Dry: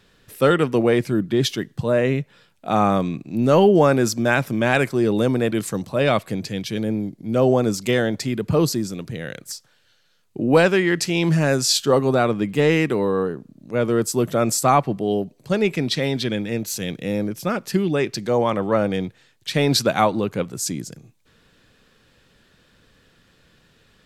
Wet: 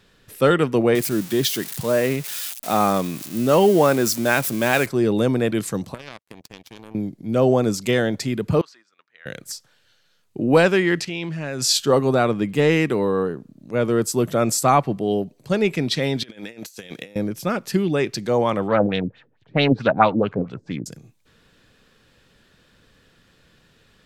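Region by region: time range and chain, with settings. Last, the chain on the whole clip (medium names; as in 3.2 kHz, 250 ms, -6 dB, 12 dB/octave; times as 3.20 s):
0.95–4.86 s: zero-crossing glitches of -19.5 dBFS + bass shelf 110 Hz -11 dB
5.94–6.95 s: compression 10:1, threshold -23 dBFS + power-law waveshaper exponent 3
8.61–9.26 s: ladder band-pass 1.7 kHz, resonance 35% + gate -58 dBFS, range -10 dB
11.01–11.62 s: low-pass 3.7 kHz 6 dB/octave + peaking EQ 2.8 kHz +6.5 dB 1.4 oct + level held to a coarse grid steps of 14 dB
16.23–17.16 s: high-pass 670 Hz 6 dB/octave + compressor with a negative ratio -37 dBFS, ratio -0.5
18.68–20.86 s: peaking EQ 350 Hz -5 dB 0.28 oct + LFO low-pass sine 4.5 Hz 280–3700 Hz + loudspeaker Doppler distortion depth 0.35 ms
whole clip: none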